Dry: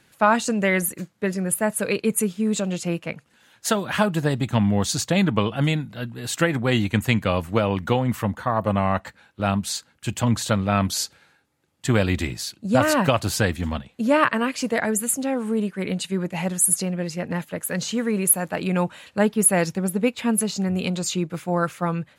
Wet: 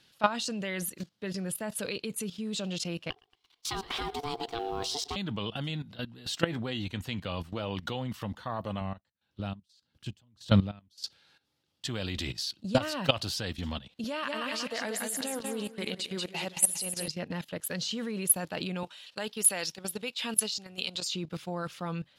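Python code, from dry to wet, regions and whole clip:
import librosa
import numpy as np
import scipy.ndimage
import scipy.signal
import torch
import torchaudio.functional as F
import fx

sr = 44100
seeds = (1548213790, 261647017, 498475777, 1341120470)

y = fx.chain(x, sr, fx.law_mismatch(coded='A'),
    fx.ring_mod(carrier_hz=580.0),
    fx.echo_feedback(ms=114, feedback_pct=32, wet_db=-17.0), at=(3.1, 5.16))
y = fx.chain(y, sr, fx.high_shelf(hz=2600.0, db=-4.5),
    fx.doubler(ms=12.0, db=-12.0), at=(5.68, 7.68))
y = fx.chain(y, sr, fx.low_shelf(hz=360.0, db=10.5),
    fx.tremolo_db(hz=1.7, depth_db=39), at=(8.81, 11.04))
y = fx.chain(y, sr, fx.highpass(hz=430.0, slope=6),
    fx.high_shelf(hz=11000.0, db=4.0),
    fx.echo_feedback(ms=185, feedback_pct=38, wet_db=-6), at=(14.04, 17.08))
y = fx.chain(y, sr, fx.highpass(hz=630.0, slope=6),
    fx.high_shelf(hz=2600.0, db=5.0), at=(18.83, 21.08))
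y = fx.band_shelf(y, sr, hz=4000.0, db=10.5, octaves=1.2)
y = fx.level_steps(y, sr, step_db=15)
y = F.gain(torch.from_numpy(y), -4.0).numpy()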